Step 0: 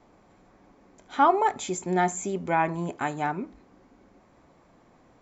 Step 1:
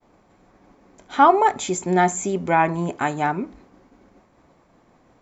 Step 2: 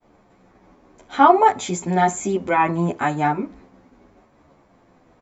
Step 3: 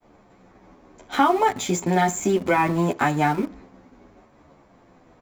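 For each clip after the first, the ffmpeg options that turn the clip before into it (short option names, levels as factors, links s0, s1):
-af "agate=range=0.0224:threshold=0.00224:ratio=3:detection=peak,volume=2"
-filter_complex "[0:a]highshelf=f=6900:g=-6,asplit=2[s0][s1];[s1]adelay=10.6,afreqshift=-0.91[s2];[s0][s2]amix=inputs=2:normalize=1,volume=1.68"
-filter_complex "[0:a]acrossover=split=310|1700[s0][s1][s2];[s0]acompressor=threshold=0.0355:ratio=4[s3];[s1]acompressor=threshold=0.0501:ratio=4[s4];[s2]acompressor=threshold=0.0251:ratio=4[s5];[s3][s4][s5]amix=inputs=3:normalize=0,asplit=2[s6][s7];[s7]aeval=exprs='val(0)*gte(abs(val(0)),0.0266)':c=same,volume=0.501[s8];[s6][s8]amix=inputs=2:normalize=0,volume=1.19"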